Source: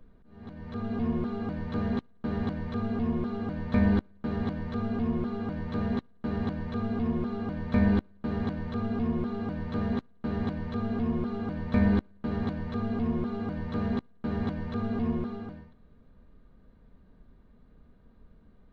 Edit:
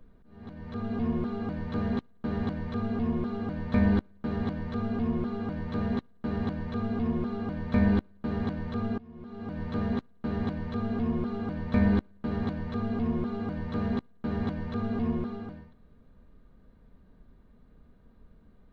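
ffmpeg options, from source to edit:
-filter_complex "[0:a]asplit=2[a][b];[a]atrim=end=8.98,asetpts=PTS-STARTPTS,afade=t=out:st=8.976:d=0.004:c=hsin:silence=0.0749894[c];[b]atrim=start=8.98,asetpts=PTS-STARTPTS,afade=t=in:d=0.64:c=qua:silence=0.0749894[d];[c][d]concat=n=2:v=0:a=1"

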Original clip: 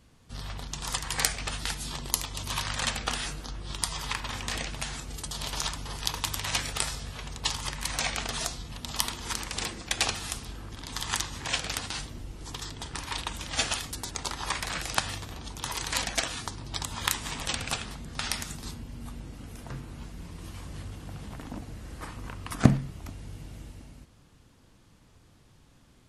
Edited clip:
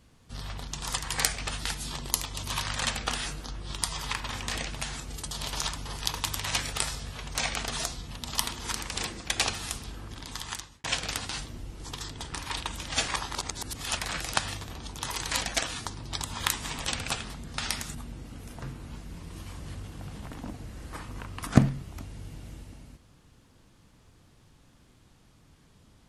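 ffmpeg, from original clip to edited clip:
-filter_complex "[0:a]asplit=6[a][b][c][d][e][f];[a]atrim=end=7.352[g];[b]atrim=start=7.958:end=11.45,asetpts=PTS-STARTPTS,afade=t=out:st=2.812:d=0.68[h];[c]atrim=start=11.45:end=13.692,asetpts=PTS-STARTPTS,afade=t=in:d=0.004:c=hsin[i];[d]atrim=start=13.688:end=14.582,asetpts=PTS-STARTPTS,areverse[j];[e]atrim=start=14.578:end=18.562[k];[f]atrim=start=19.028[l];[h][i]concat=n=2:v=0:a=1[m];[g][m]acrossfade=d=0.004:c1=hsin:c2=hsin[n];[n][j]acrossfade=d=0.004:c1=hsin:c2=hsin[o];[o][k]acrossfade=d=0.004:c1=hsin:c2=hsin[p];[p][l]acrossfade=d=0.004:c1=hsin:c2=hsin"

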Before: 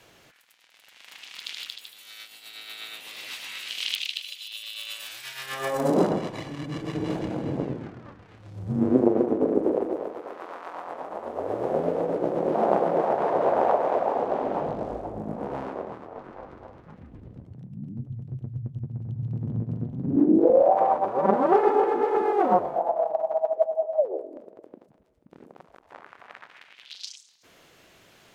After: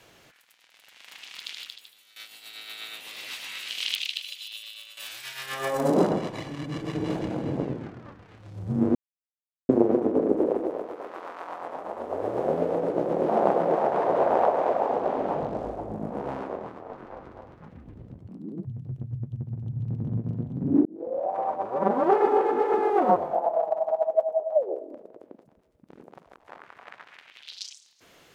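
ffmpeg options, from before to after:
-filter_complex "[0:a]asplit=7[a][b][c][d][e][f][g];[a]atrim=end=2.16,asetpts=PTS-STARTPTS,afade=t=out:st=1.32:d=0.84:silence=0.177828[h];[b]atrim=start=2.16:end=4.97,asetpts=PTS-STARTPTS,afade=t=in:d=0.004:c=hsin:silence=0.177828,afade=t=out:st=2.28:d=0.53:silence=0.177828[i];[c]atrim=start=4.97:end=8.95,asetpts=PTS-STARTPTS,afade=t=in:d=0.004:c=hsin:silence=0.177828,afade=t=out:st=3.976:d=0.004:c=hsin,apad=pad_dur=0.74[j];[d]atrim=start=8.95:end=17.554,asetpts=PTS-STARTPTS,afade=t=in:d=0.004:c=hsin[k];[e]atrim=start=17.55:end=18.08,asetpts=PTS-STARTPTS,asetrate=64386,aresample=44100[l];[f]atrim=start=18.076:end=20.28,asetpts=PTS-STARTPTS,afade=t=out:st=2.2:d=0.004:c=hsin[m];[g]atrim=start=20.28,asetpts=PTS-STARTPTS,afade=t=in:d=1.92:c=qsin[n];[h][i][j][k]concat=n=4:v=0:a=1[o];[o][l]acrossfade=d=0.004:c1=hsin:c2=hsin[p];[m][n]concat=n=2:v=0:a=1[q];[p][q]acrossfade=d=0.004:c1=hsin:c2=hsin"

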